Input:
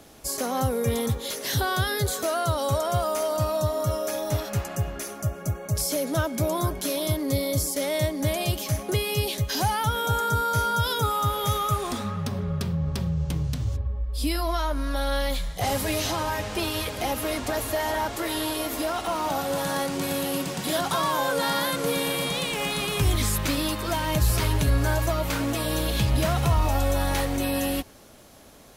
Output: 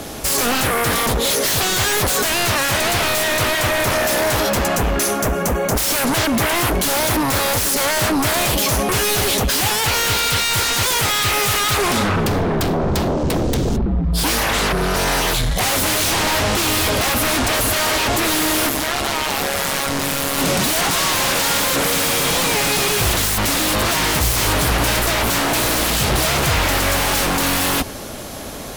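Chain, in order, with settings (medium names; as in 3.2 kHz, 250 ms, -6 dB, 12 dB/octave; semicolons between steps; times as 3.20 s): in parallel at -4 dB: sine folder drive 19 dB, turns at -12 dBFS; 18.69–20.38 s: on the sum: AM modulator 140 Hz, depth 50%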